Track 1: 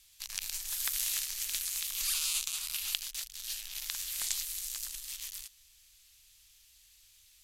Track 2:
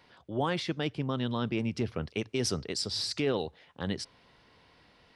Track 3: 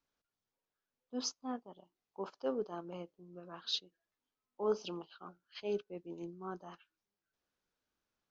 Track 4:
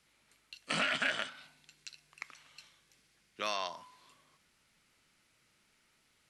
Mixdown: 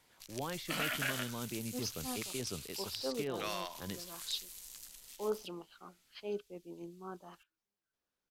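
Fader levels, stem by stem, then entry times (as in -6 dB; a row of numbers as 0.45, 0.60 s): -12.0, -10.5, -2.5, -4.5 dB; 0.00, 0.00, 0.60, 0.00 s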